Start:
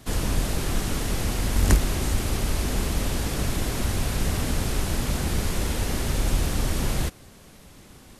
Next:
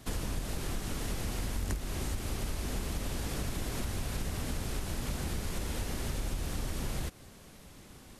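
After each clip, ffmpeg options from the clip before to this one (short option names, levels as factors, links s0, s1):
-af "acompressor=threshold=0.0447:ratio=5,volume=0.631"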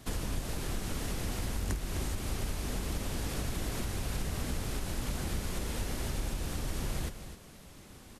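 -af "aecho=1:1:257:0.299"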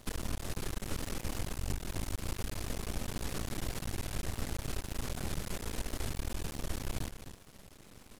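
-af "aeval=exprs='max(val(0),0)':c=same,volume=1.12"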